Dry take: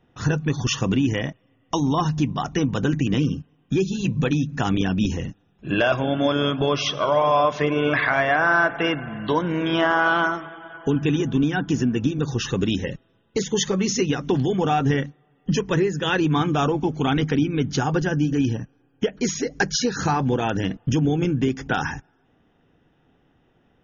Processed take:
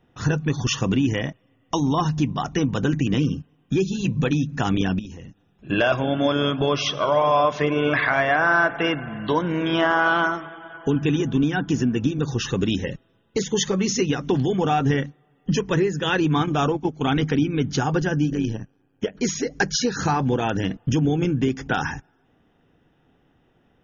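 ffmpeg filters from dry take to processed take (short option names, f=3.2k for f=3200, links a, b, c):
-filter_complex "[0:a]asettb=1/sr,asplit=3[a][b][c];[a]atrim=end=4.994[d];[b]atrim=start=4.99:end=5.7,asetpts=PTS-STARTPTS,afade=t=in:d=0.004:c=qsin,afade=t=out:st=0.706:d=0.004:c=qsin,acompressor=threshold=-45dB:ratio=2:attack=3.2:release=140:knee=1:detection=peak[e];[c]atrim=start=5.696[f];[d][e]acrossfade=d=0.004:c1=hsin:c2=qsin[g];[g][f]acrossfade=d=0.004:c1=qsin:c2=hsin,asplit=3[h][i][j];[h]afade=t=out:st=16.45:d=0.02[k];[i]agate=range=-10dB:threshold=-23dB:ratio=16:release=100:detection=peak,afade=t=in:st=16.45:d=0.02,afade=t=out:st=17.11:d=0.02[l];[j]afade=t=in:st=17.11:d=0.02[m];[k][l][m]amix=inputs=3:normalize=0,asettb=1/sr,asplit=3[n][o][p];[n]atrim=end=18.304[q];[o]atrim=start=18.3:end=19.15,asetpts=PTS-STARTPTS,afade=t=in:d=0.004:c=qsin,afade=t=out:st=0.846:d=0.004:c=qsin,tremolo=f=99:d=0.667[r];[p]atrim=start=19.146[s];[q][r]acrossfade=d=0.004:c1=hsin:c2=qsin[t];[t][s]acrossfade=d=0.004:c1=qsin:c2=hsin"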